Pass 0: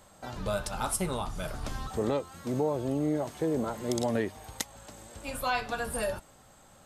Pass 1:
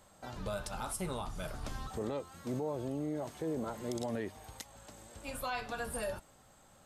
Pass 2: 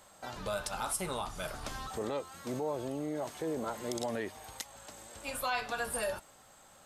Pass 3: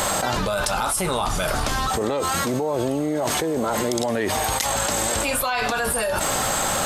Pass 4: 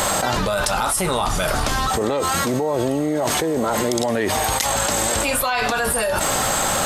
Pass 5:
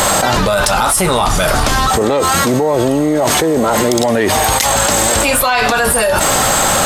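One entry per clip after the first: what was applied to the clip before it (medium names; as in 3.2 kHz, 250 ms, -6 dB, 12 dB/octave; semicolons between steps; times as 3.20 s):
peak limiter -23 dBFS, peak gain reduction 9 dB; trim -5 dB
bass shelf 350 Hz -10 dB; trim +5.5 dB
level flattener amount 100%; trim +8 dB
whistle 1.9 kHz -50 dBFS; trim +2.5 dB
saturation -11 dBFS, distortion -23 dB; trim +8.5 dB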